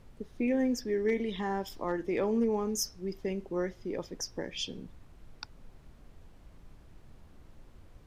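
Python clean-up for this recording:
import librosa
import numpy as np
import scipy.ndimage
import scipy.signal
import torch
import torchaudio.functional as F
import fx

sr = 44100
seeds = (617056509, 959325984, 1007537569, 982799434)

y = fx.fix_declip(x, sr, threshold_db=-20.5)
y = fx.noise_reduce(y, sr, print_start_s=5.7, print_end_s=6.2, reduce_db=23.0)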